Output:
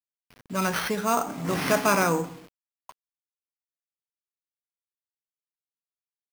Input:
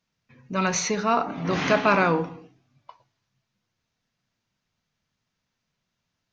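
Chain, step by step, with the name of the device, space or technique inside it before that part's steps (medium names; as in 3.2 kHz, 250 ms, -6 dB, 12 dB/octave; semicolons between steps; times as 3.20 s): early 8-bit sampler (sample-rate reducer 7.5 kHz, jitter 0%; bit crusher 8-bit); trim -2 dB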